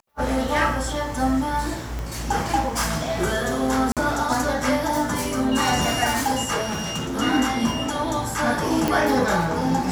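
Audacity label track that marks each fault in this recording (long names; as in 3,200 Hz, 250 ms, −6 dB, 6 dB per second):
1.990000	1.990000	click
3.920000	3.970000	drop-out 47 ms
6.620000	7.190000	clipping −23 dBFS
8.880000	8.880000	click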